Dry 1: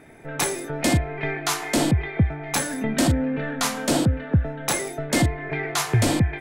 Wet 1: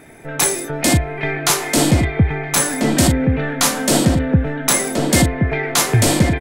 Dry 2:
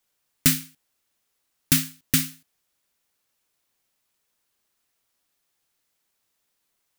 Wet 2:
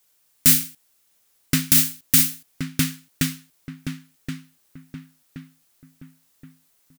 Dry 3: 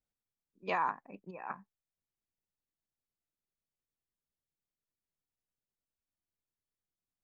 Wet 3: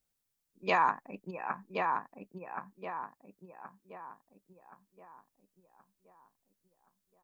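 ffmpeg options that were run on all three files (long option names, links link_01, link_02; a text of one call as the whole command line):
ffmpeg -i in.wav -filter_complex "[0:a]highshelf=frequency=5300:gain=8,asplit=2[link_01][link_02];[link_02]adelay=1074,lowpass=frequency=2000:poles=1,volume=-3.5dB,asplit=2[link_03][link_04];[link_04]adelay=1074,lowpass=frequency=2000:poles=1,volume=0.44,asplit=2[link_05][link_06];[link_06]adelay=1074,lowpass=frequency=2000:poles=1,volume=0.44,asplit=2[link_07][link_08];[link_08]adelay=1074,lowpass=frequency=2000:poles=1,volume=0.44,asplit=2[link_09][link_10];[link_10]adelay=1074,lowpass=frequency=2000:poles=1,volume=0.44,asplit=2[link_11][link_12];[link_12]adelay=1074,lowpass=frequency=2000:poles=1,volume=0.44[link_13];[link_03][link_05][link_07][link_09][link_11][link_13]amix=inputs=6:normalize=0[link_14];[link_01][link_14]amix=inputs=2:normalize=0,alimiter=level_in=6dB:limit=-1dB:release=50:level=0:latency=1,volume=-1dB" out.wav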